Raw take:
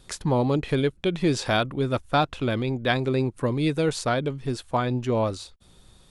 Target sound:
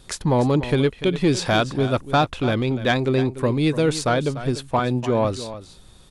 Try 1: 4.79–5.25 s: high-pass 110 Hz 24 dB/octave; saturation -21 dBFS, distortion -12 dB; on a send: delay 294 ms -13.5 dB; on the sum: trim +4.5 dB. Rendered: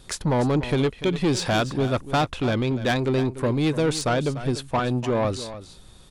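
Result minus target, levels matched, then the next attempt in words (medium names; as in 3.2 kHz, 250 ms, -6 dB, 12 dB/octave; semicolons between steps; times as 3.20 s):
saturation: distortion +10 dB
4.79–5.25 s: high-pass 110 Hz 24 dB/octave; saturation -12.5 dBFS, distortion -22 dB; on a send: delay 294 ms -13.5 dB; on the sum: trim +4.5 dB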